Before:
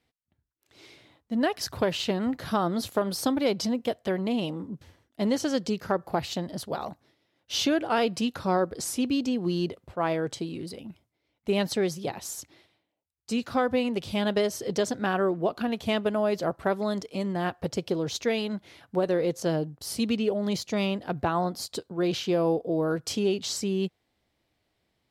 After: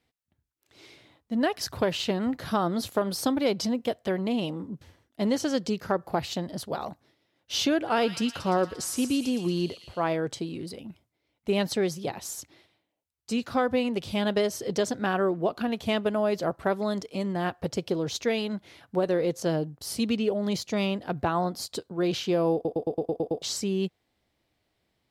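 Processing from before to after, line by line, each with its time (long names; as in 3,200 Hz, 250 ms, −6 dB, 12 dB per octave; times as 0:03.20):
0:07.76–0:10.04: delay with a high-pass on its return 115 ms, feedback 62%, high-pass 2,100 Hz, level −7 dB
0:22.54: stutter in place 0.11 s, 8 plays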